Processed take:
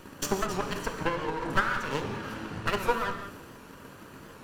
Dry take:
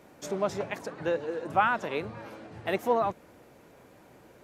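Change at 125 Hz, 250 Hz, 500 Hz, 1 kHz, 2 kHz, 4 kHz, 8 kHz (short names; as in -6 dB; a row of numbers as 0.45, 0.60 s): +5.0 dB, +1.5 dB, -3.0 dB, -1.5 dB, +3.0 dB, +6.5 dB, n/a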